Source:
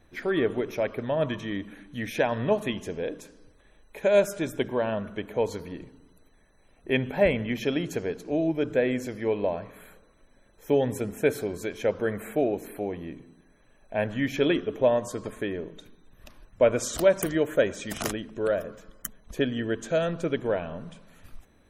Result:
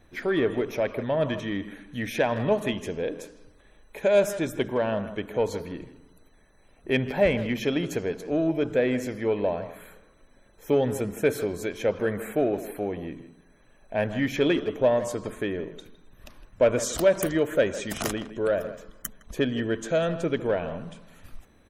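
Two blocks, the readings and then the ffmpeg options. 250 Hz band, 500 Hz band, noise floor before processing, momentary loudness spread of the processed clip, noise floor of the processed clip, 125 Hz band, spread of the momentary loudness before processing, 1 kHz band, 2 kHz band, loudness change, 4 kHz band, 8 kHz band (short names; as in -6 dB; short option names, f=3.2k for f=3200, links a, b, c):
+1.0 dB, +1.0 dB, -60 dBFS, 13 LU, -58 dBFS, +1.5 dB, 14 LU, +1.0 dB, +1.0 dB, +1.0 dB, +1.0 dB, +1.5 dB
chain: -filter_complex "[0:a]asplit=2[a][b];[b]adelay=160,highpass=300,lowpass=3.4k,asoftclip=type=hard:threshold=-18.5dB,volume=-14dB[c];[a][c]amix=inputs=2:normalize=0,asplit=2[d][e];[e]asoftclip=type=tanh:threshold=-23dB,volume=-6dB[f];[d][f]amix=inputs=2:normalize=0,volume=-1.5dB"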